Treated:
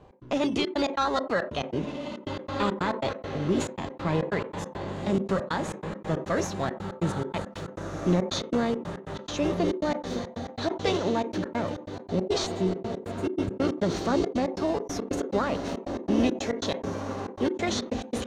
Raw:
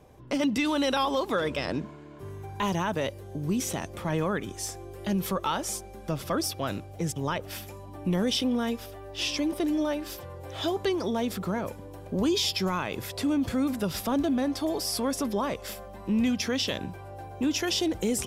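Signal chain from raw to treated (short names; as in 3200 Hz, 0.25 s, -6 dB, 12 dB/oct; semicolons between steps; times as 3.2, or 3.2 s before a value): spectral gain 12.46–13.51, 470–5600 Hz -28 dB; diffused feedback echo 1.73 s, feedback 41%, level -7 dB; in parallel at -10.5 dB: sample-and-hold 18×; on the sum: step gate "x.xxxx.x.xx.x." 139 bpm -60 dB; on a send at -19 dB: reverb RT60 0.30 s, pre-delay 3 ms; on the sum: formant shift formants +3 st; air absorption 110 m; sustainer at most 120 dB/s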